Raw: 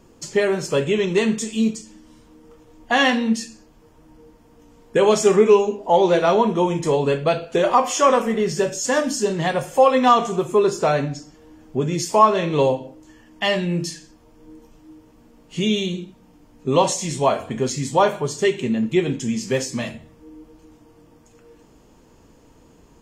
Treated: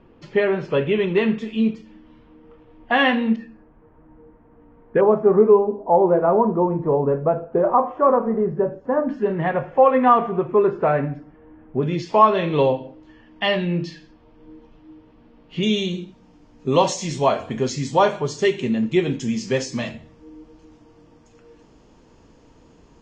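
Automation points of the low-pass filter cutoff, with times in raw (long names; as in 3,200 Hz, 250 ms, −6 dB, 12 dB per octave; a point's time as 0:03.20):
low-pass filter 24 dB per octave
3,100 Hz
from 0:03.36 1,900 Hz
from 0:05.01 1,200 Hz
from 0:09.09 2,100 Hz
from 0:11.83 3,900 Hz
from 0:15.63 6,300 Hz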